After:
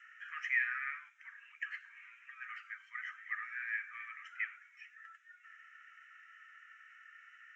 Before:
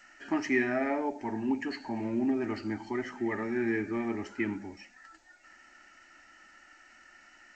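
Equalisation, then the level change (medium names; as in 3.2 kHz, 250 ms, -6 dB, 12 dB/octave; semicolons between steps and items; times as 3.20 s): steep high-pass 1.2 kHz 72 dB/octave; distance through air 150 m; static phaser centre 1.9 kHz, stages 4; +1.5 dB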